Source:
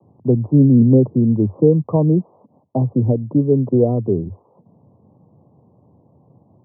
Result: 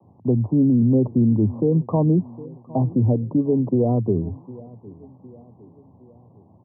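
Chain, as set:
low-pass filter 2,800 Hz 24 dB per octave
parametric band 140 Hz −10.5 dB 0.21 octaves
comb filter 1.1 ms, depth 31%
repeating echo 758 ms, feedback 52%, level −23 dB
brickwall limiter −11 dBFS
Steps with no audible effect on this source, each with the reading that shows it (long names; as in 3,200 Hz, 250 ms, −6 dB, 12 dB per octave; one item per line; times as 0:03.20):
low-pass filter 2,800 Hz: nothing at its input above 960 Hz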